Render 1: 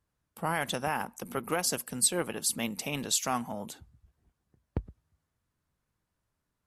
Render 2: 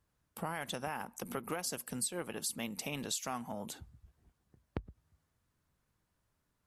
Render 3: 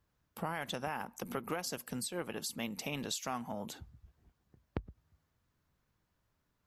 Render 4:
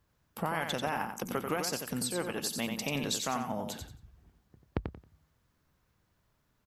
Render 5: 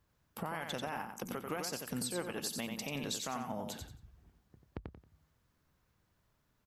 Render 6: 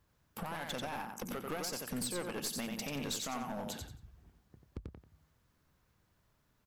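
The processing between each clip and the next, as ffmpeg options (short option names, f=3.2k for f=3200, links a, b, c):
-af "acompressor=threshold=-40dB:ratio=3,volume=2dB"
-af "equalizer=f=9.4k:t=o:w=0.57:g=-9,volume=1dB"
-af "aecho=1:1:90|180|270:0.501|0.12|0.0289,volume=4.5dB"
-af "alimiter=limit=-24dB:level=0:latency=1:release=436,volume=-2dB"
-af "aeval=exprs='clip(val(0),-1,0.0112)':c=same,volume=2dB"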